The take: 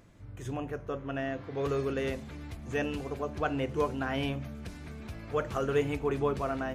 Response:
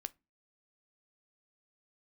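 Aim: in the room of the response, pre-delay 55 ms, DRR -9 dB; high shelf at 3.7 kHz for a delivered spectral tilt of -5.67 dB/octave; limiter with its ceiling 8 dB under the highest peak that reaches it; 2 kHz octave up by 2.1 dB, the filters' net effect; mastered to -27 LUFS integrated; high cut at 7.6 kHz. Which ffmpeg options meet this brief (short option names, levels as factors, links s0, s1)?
-filter_complex "[0:a]lowpass=7600,equalizer=f=2000:t=o:g=5,highshelf=f=3700:g=-8.5,alimiter=limit=0.0668:level=0:latency=1,asplit=2[s0][s1];[1:a]atrim=start_sample=2205,adelay=55[s2];[s1][s2]afir=irnorm=-1:irlink=0,volume=3.98[s3];[s0][s3]amix=inputs=2:normalize=0,volume=0.794"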